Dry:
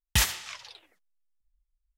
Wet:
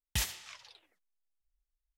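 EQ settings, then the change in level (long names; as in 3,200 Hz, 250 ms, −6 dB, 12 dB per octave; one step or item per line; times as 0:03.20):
dynamic equaliser 1,300 Hz, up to −5 dB, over −41 dBFS, Q 1.2
−8.5 dB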